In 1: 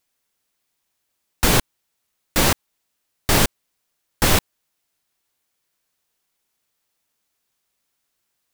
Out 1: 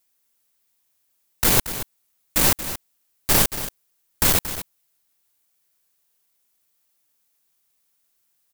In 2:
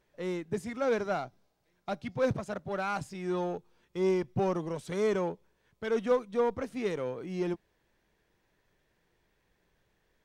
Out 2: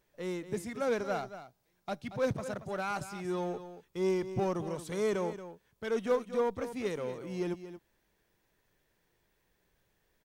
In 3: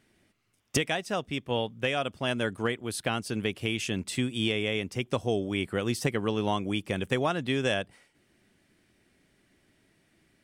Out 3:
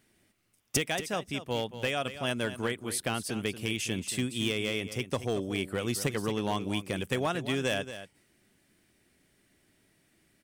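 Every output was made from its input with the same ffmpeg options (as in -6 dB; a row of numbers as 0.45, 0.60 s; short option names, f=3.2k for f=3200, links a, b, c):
-filter_complex "[0:a]aeval=exprs='clip(val(0),-1,0.112)':c=same,highshelf=f=8.1k:g=11,asplit=2[a][b];[b]aecho=0:1:229:0.251[c];[a][c]amix=inputs=2:normalize=0,volume=-2.5dB"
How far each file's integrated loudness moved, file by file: -0.5, -2.5, -2.0 LU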